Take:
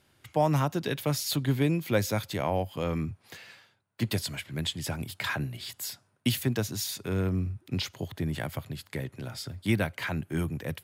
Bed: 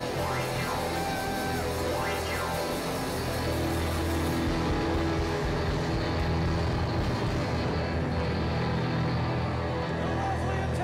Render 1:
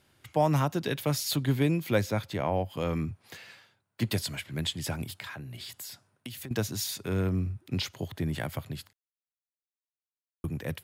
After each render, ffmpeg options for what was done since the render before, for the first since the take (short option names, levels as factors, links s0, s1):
-filter_complex "[0:a]asettb=1/sr,asplit=3[s0][s1][s2];[s0]atrim=end=2.014[s3];[s1]atrim=start=2.01:end=2.7,asetpts=PTS-STARTPTS,afade=t=in:d=0.004:c=qsin,afade=t=out:st=0.686:d=0.004:c=qsin,highshelf=f=4200:g=-9.5[s4];[s2]atrim=start=2.696[s5];[s3][s4]acrossfade=d=0.004:c1=hsin:c2=qsin[s6];[s6][s5]acrossfade=d=0.004:c1=qsin:c2=hsin,asettb=1/sr,asplit=3[s7][s8][s9];[s7]atrim=end=5.164[s10];[s8]atrim=start=5.16:end=6.51,asetpts=PTS-STARTPTS,afade=t=in:d=0.004:c=qsin,afade=t=out:st=1.346:d=0.004:c=qsin,acompressor=threshold=0.0141:ratio=10:attack=3.2:release=140:knee=1:detection=peak[s11];[s9]atrim=start=6.506[s12];[s10][s11]acrossfade=d=0.004:c1=hsin:c2=qsin[s13];[s13][s12]acrossfade=d=0.004:c1=qsin:c2=hsin,asplit=3[s14][s15][s16];[s14]atrim=end=8.93,asetpts=PTS-STARTPTS,afade=t=out:st=8.926:d=0.004:c=hsin[s17];[s15]atrim=start=8.93:end=10.44,asetpts=PTS-STARTPTS,volume=0[s18];[s16]atrim=start=10.44,asetpts=PTS-STARTPTS,afade=t=in:d=0.004:c=hsin[s19];[s17][s18][s19]concat=n=3:v=0:a=1"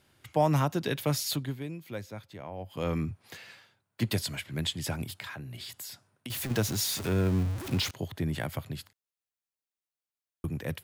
-filter_complex "[0:a]asettb=1/sr,asplit=3[s0][s1][s2];[s0]atrim=end=6.304[s3];[s1]atrim=start=6.3:end=7.91,asetpts=PTS-STARTPTS,afade=t=in:d=0.004:c=qsin,afade=t=out:st=1.606:d=0.004:c=qsin,aeval=exprs='val(0)+0.5*0.0224*sgn(val(0))':c=same[s4];[s2]atrim=start=7.906[s5];[s3][s4]acrossfade=d=0.004:c1=hsin:c2=qsin[s6];[s6][s5]acrossfade=d=0.004:c1=qsin:c2=hsin,asplit=3[s7][s8][s9];[s7]atrim=end=1.56,asetpts=PTS-STARTPTS,afade=t=out:st=1.25:d=0.31:silence=0.237137[s10];[s8]atrim=start=1.56:end=2.57,asetpts=PTS-STARTPTS,volume=0.237[s11];[s9]atrim=start=2.57,asetpts=PTS-STARTPTS,afade=t=in:d=0.31:silence=0.237137[s12];[s10][s11][s12]concat=n=3:v=0:a=1"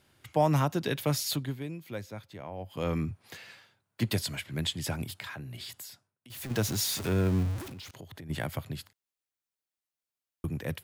-filter_complex "[0:a]asplit=3[s0][s1][s2];[s0]afade=t=out:st=7.63:d=0.02[s3];[s1]acompressor=threshold=0.00794:ratio=8:attack=3.2:release=140:knee=1:detection=peak,afade=t=in:st=7.63:d=0.02,afade=t=out:st=8.29:d=0.02[s4];[s2]afade=t=in:st=8.29:d=0.02[s5];[s3][s4][s5]amix=inputs=3:normalize=0,asplit=3[s6][s7][s8];[s6]atrim=end=6.14,asetpts=PTS-STARTPTS,afade=t=out:st=5.72:d=0.42:silence=0.0944061[s9];[s7]atrim=start=6.14:end=6.22,asetpts=PTS-STARTPTS,volume=0.0944[s10];[s8]atrim=start=6.22,asetpts=PTS-STARTPTS,afade=t=in:d=0.42:silence=0.0944061[s11];[s9][s10][s11]concat=n=3:v=0:a=1"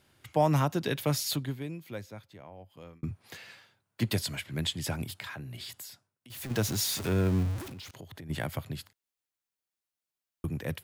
-filter_complex "[0:a]asplit=2[s0][s1];[s0]atrim=end=3.03,asetpts=PTS-STARTPTS,afade=t=out:st=1.76:d=1.27[s2];[s1]atrim=start=3.03,asetpts=PTS-STARTPTS,afade=t=in:d=0.004:c=hsin[s3];[s2][s3]concat=n=2:v=0:a=1"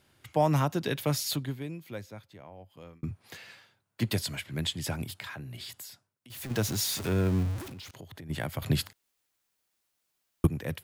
-filter_complex "[0:a]asplit=3[s0][s1][s2];[s0]atrim=end=8.622[s3];[s1]atrim=start=8.618:end=10.472,asetpts=PTS-STARTPTS,volume=3.76[s4];[s2]atrim=start=10.468[s5];[s3][s4]acrossfade=d=0.004:c1=hsin:c2=hsin[s6];[s6][s5]acrossfade=d=0.004:c1=hsin:c2=hsin"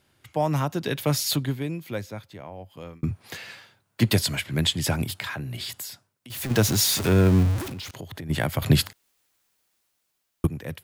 -af "dynaudnorm=f=130:g=17:m=2.66"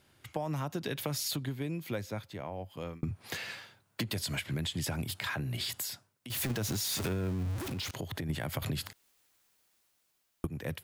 -af "alimiter=limit=0.141:level=0:latency=1:release=59,acompressor=threshold=0.0282:ratio=10"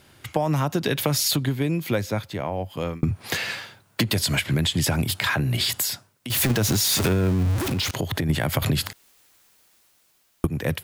-af "volume=3.98"